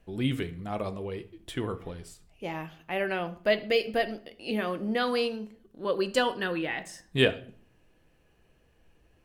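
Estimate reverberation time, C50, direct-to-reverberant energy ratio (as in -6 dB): 0.45 s, 16.0 dB, 9.5 dB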